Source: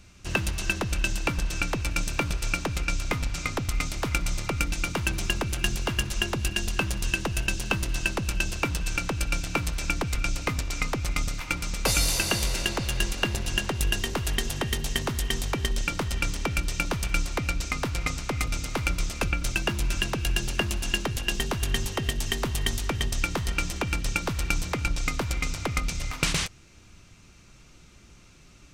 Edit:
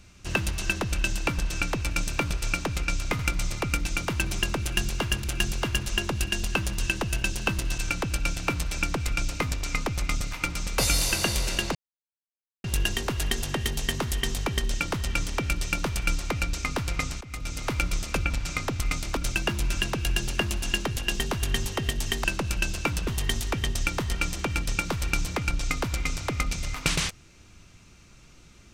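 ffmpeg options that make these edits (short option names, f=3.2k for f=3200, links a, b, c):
-filter_complex "[0:a]asplit=11[a][b][c][d][e][f][g][h][i][j][k];[a]atrim=end=3.192[l];[b]atrim=start=4.058:end=6.112[m];[c]atrim=start=5.478:end=8.022[n];[d]atrim=start=8.848:end=12.82,asetpts=PTS-STARTPTS,afade=t=out:st=3.968:d=0.004:c=hsin[o];[e]atrim=start=12.82:end=13.71,asetpts=PTS-STARTPTS,volume=0[p];[f]atrim=start=13.71:end=18.28,asetpts=PTS-STARTPTS,afade=t=in:d=0.004:c=hsin,afade=t=out:st=4.566:d=0.004:c=hsin:silence=0.105925[q];[g]atrim=start=18.28:end=19.372,asetpts=PTS-STARTPTS,afade=t=in:d=0.44:silence=0.105925[r];[h]atrim=start=3.188:end=4.062[s];[i]atrim=start=19.368:end=22.442[t];[j]atrim=start=8.018:end=8.852[u];[k]atrim=start=22.438[v];[l][m]acrossfade=d=0.004:c1=hsin:c2=hsin[w];[w][n]acrossfade=d=0.004:c1=hsin:c2=hsin[x];[o][p][q][r]concat=n=4:v=0:a=1[y];[x][y]acrossfade=d=0.004:c1=hsin:c2=hsin[z];[z][s]acrossfade=d=0.004:c1=hsin:c2=hsin[aa];[aa][t]acrossfade=d=0.004:c1=hsin:c2=hsin[ab];[ab][u]acrossfade=d=0.004:c1=hsin:c2=hsin[ac];[ac][v]acrossfade=d=0.004:c1=hsin:c2=hsin"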